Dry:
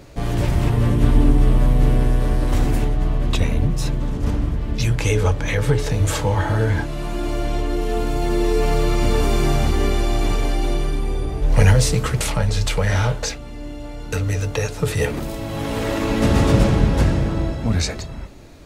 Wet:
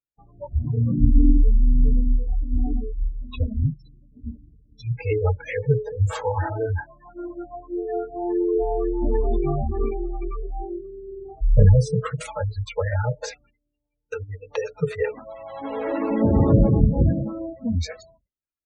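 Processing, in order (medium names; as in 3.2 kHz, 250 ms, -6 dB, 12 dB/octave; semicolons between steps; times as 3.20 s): spectral gate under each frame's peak -20 dB strong; spectral noise reduction 28 dB; expander -45 dBFS; treble shelf 2.4 kHz -11 dB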